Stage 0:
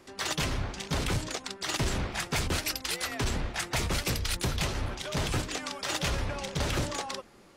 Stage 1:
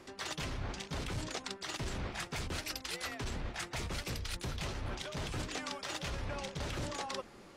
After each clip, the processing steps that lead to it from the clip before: reverse; compression 10:1, threshold -37 dBFS, peak gain reduction 12 dB; reverse; treble shelf 11 kHz -9 dB; trim +1.5 dB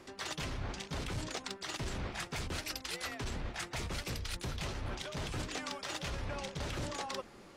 hard clipper -28.5 dBFS, distortion -40 dB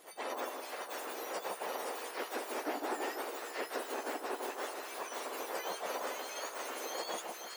spectrum inverted on a logarithmic axis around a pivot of 1.9 kHz; two-band feedback delay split 1.2 kHz, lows 154 ms, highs 520 ms, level -3.5 dB; trim +1 dB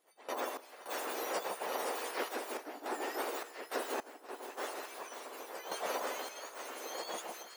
random-step tremolo, depth 90%; trim +3.5 dB

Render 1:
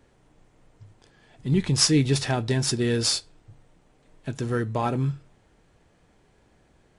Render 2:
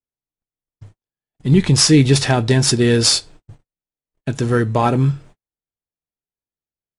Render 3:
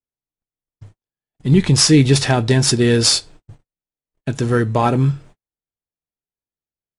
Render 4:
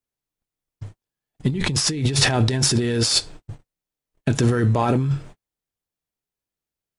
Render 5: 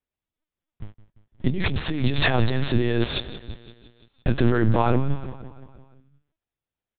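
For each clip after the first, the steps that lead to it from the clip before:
gate -48 dBFS, range -49 dB; loudness maximiser +11.5 dB; trim -2 dB
no audible change
compressor with a negative ratio -20 dBFS, ratio -1
feedback delay 172 ms, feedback 59%, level -15 dB; LPC vocoder at 8 kHz pitch kept

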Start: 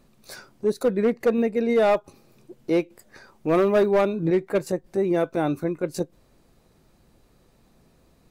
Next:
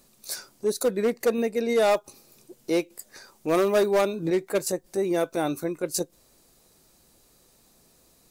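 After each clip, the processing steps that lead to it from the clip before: tone controls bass -6 dB, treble +14 dB; trim -1.5 dB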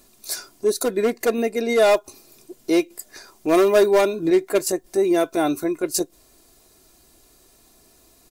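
comb 2.9 ms, depth 51%; trim +4 dB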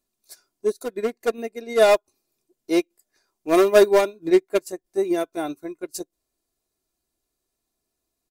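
upward expansion 2.5:1, over -31 dBFS; trim +3 dB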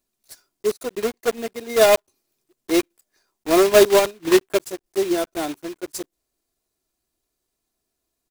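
block-companded coder 3-bit; trim +1 dB

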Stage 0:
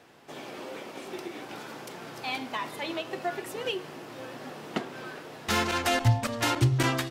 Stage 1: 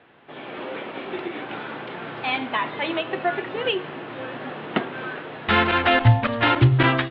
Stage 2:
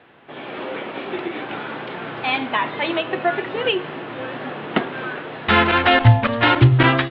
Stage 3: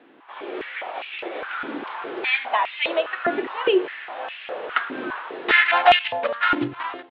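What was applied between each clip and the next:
steep low-pass 3.6 kHz 48 dB/octave; peaking EQ 1.6 kHz +3 dB 0.93 oct; level rider gain up to 6.5 dB; trim +1 dB
wow and flutter 27 cents; trim +3.5 dB
fade out at the end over 1.19 s; delay 1036 ms -22 dB; step-sequenced high-pass 4.9 Hz 280–2600 Hz; trim -5.5 dB

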